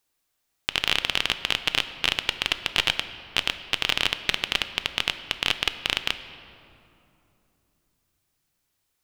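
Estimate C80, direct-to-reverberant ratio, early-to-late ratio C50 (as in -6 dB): 12.5 dB, 9.5 dB, 11.5 dB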